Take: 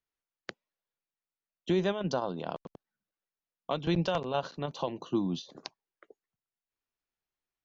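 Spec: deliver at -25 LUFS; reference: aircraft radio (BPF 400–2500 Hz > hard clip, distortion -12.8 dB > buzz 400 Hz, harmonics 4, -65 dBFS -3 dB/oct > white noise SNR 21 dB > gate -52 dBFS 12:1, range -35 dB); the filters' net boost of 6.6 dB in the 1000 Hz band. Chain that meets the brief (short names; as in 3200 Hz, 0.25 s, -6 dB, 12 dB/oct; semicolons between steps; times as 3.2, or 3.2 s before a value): BPF 400–2500 Hz; bell 1000 Hz +9 dB; hard clip -21 dBFS; buzz 400 Hz, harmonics 4, -65 dBFS -3 dB/oct; white noise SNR 21 dB; gate -52 dBFS 12:1, range -35 dB; gain +9 dB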